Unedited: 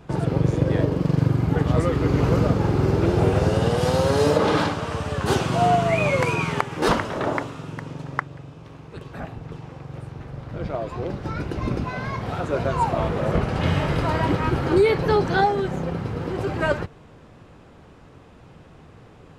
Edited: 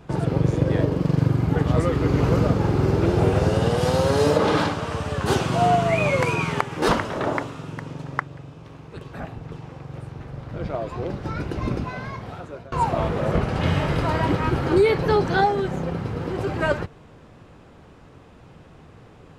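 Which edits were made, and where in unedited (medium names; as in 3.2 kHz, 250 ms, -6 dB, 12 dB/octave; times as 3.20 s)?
11.68–12.72 s: fade out, to -23 dB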